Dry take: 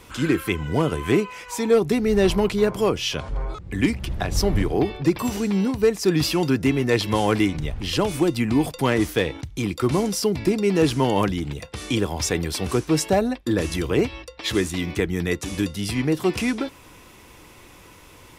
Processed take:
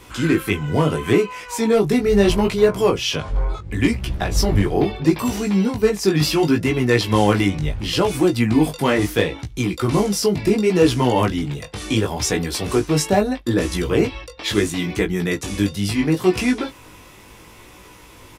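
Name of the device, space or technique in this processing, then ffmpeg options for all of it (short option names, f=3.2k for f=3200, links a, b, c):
double-tracked vocal: -filter_complex "[0:a]asplit=2[a][b];[b]adelay=19,volume=-14dB[c];[a][c]amix=inputs=2:normalize=0,flanger=delay=16:depth=4.6:speed=0.73,volume=6dB"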